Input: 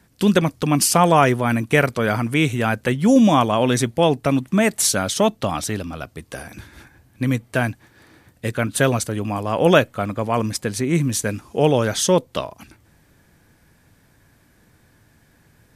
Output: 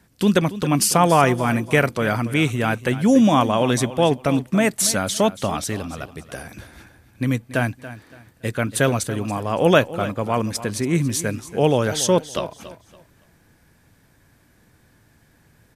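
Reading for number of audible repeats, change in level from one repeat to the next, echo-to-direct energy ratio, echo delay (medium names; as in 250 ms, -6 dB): 2, -11.0 dB, -14.5 dB, 282 ms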